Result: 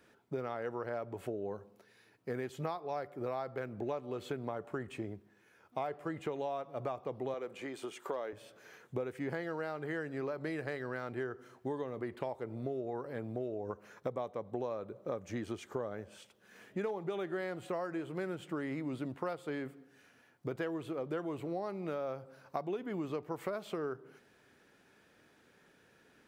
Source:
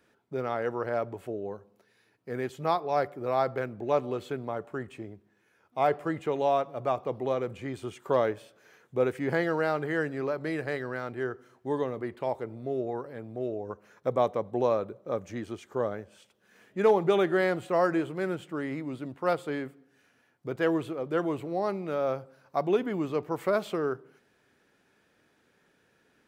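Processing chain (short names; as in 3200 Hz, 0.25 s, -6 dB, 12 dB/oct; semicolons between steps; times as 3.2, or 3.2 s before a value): compressor 12:1, threshold -36 dBFS, peak gain reduction 19 dB; 7.34–8.33 HPF 320 Hz 12 dB/oct; gain +2 dB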